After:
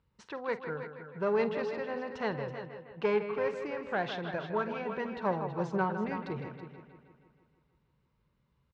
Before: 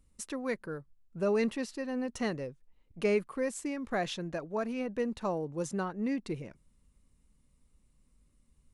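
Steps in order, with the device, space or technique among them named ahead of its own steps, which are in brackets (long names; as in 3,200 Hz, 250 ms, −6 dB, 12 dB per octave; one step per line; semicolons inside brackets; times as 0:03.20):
0:04.42–0:06.09: comb filter 5.2 ms, depth 65%
analogue delay pedal into a guitar amplifier (bucket-brigade delay 158 ms, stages 4,096, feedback 61%, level −9.5 dB; tube saturation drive 21 dB, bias 0.5; loudspeaker in its box 80–4,300 Hz, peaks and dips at 130 Hz +7 dB, 260 Hz −10 dB, 450 Hz +4 dB, 930 Hz +9 dB, 1,500 Hz +7 dB)
multi-tap delay 48/328 ms −15.5/−11.5 dB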